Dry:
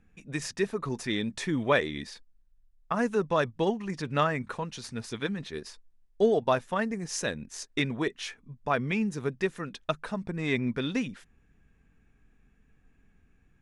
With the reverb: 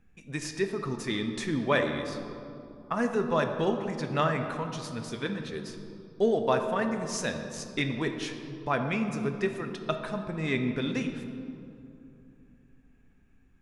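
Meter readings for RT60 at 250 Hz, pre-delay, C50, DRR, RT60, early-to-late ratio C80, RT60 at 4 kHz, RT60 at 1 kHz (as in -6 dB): 3.6 s, 8 ms, 6.5 dB, 5.0 dB, 2.9 s, 7.5 dB, 1.5 s, 2.8 s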